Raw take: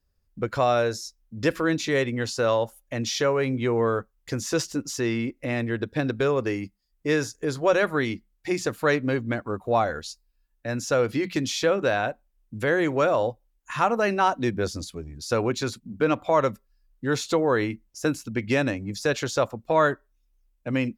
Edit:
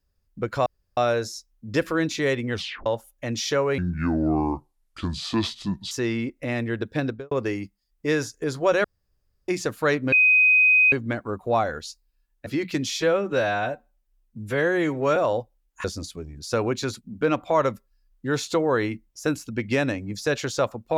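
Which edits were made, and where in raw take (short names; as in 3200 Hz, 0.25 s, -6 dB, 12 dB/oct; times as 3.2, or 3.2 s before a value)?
0.66 insert room tone 0.31 s
2.22 tape stop 0.33 s
3.47–4.92 speed 68%
6.04–6.32 studio fade out
7.85–8.49 room tone
9.13 add tone 2510 Hz -13.5 dBFS 0.80 s
10.67–11.08 cut
11.62–13.06 stretch 1.5×
13.74–14.63 cut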